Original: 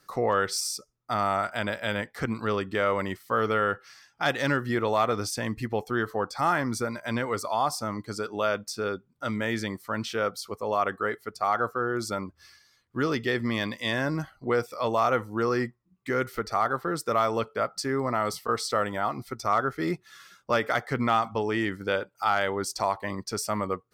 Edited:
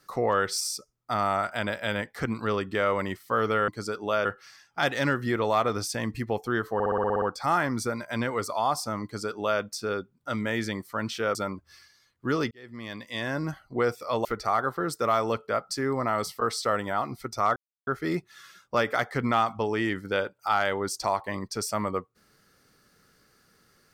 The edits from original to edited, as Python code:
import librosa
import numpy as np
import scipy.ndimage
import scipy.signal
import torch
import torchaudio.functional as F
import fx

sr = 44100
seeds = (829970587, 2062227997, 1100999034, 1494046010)

y = fx.edit(x, sr, fx.stutter(start_s=6.17, slice_s=0.06, count=9),
    fx.duplicate(start_s=7.99, length_s=0.57, to_s=3.68),
    fx.cut(start_s=10.3, length_s=1.76),
    fx.fade_in_span(start_s=13.22, length_s=1.1),
    fx.cut(start_s=14.96, length_s=1.36),
    fx.insert_silence(at_s=19.63, length_s=0.31), tone=tone)